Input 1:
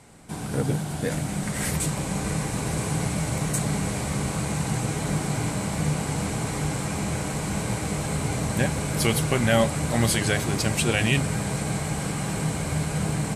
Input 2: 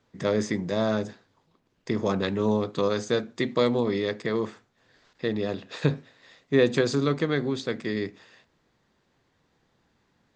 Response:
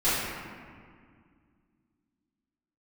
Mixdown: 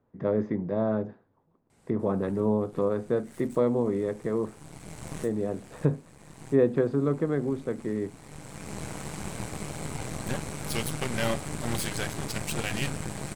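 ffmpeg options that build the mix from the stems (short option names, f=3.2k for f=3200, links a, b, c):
-filter_complex "[0:a]aeval=exprs='0.447*(cos(1*acos(clip(val(0)/0.447,-1,1)))-cos(1*PI/2))+0.0891*(cos(3*acos(clip(val(0)/0.447,-1,1)))-cos(3*PI/2))+0.0158*(cos(5*acos(clip(val(0)/0.447,-1,1)))-cos(5*PI/2))+0.0447*(cos(8*acos(clip(val(0)/0.447,-1,1)))-cos(8*PI/2))':c=same,adelay=1700,volume=-5.5dB[a];[1:a]lowpass=1k,volume=-1dB,asplit=2[b][c];[c]apad=whole_len=663880[d];[a][d]sidechaincompress=threshold=-40dB:ratio=8:attack=7.3:release=746[e];[e][b]amix=inputs=2:normalize=0"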